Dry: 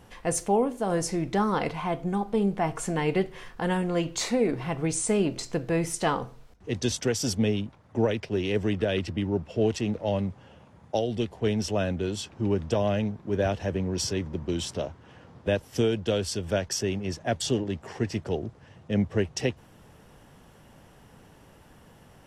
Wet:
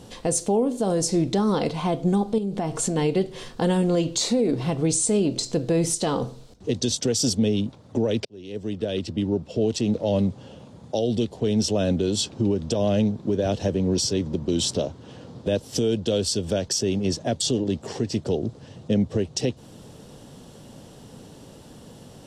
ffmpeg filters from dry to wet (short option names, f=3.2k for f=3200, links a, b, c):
-filter_complex "[0:a]asettb=1/sr,asplit=3[a][b][c];[a]atrim=end=2.384[d];[b]atrim=start=2.38:end=2.96,asetpts=PTS-STARTPTS,afade=t=in:d=0.004:c=qsin,afade=t=out:st=0.576:d=0.004:c=qsin,acompressor=threshold=-32dB:ratio=3:attack=3.2:release=140:knee=1:detection=peak[e];[c]atrim=start=2.956[f];[d][e]acrossfade=d=0.004:c1=hsin:c2=qsin[g];[g][f]acrossfade=d=0.004:c1=qsin:c2=hsin,asplit=2[h][i];[h]atrim=end=8.25,asetpts=PTS-STARTPTS,afade=t=out:st=8.246:d=0.004:c=hsin[j];[i]atrim=start=8.25,asetpts=PTS-STARTPTS,afade=t=in:d=1.92[k];[j][k]concat=n=2:v=0:a=1,equalizer=f=125:t=o:w=1:g=6,equalizer=f=250:t=o:w=1:g=8,equalizer=f=500:t=o:w=1:g=7,equalizer=f=2k:t=o:w=1:g=-5,equalizer=f=4k:t=o:w=1:g=11,equalizer=f=8k:t=o:w=1:g=9,alimiter=limit=-15dB:level=0:latency=1:release=213,volume=1.5dB"